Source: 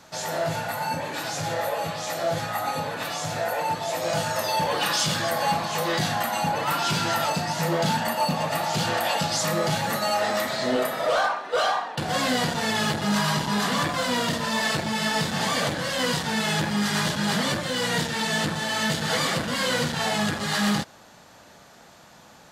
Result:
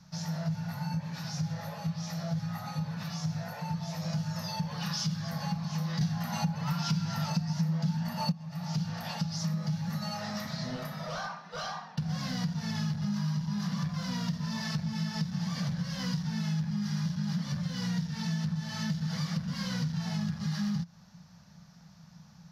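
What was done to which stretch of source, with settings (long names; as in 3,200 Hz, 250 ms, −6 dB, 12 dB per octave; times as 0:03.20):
0:06.01–0:08.32: clip gain +12 dB
whole clip: drawn EQ curve 120 Hz 0 dB, 170 Hz +11 dB, 310 Hz −24 dB, 1,000 Hz −13 dB, 3,400 Hz −15 dB, 5,600 Hz −3 dB, 8,000 Hz −25 dB, 12,000 Hz −15 dB; downward compressor 6 to 1, threshold −29 dBFS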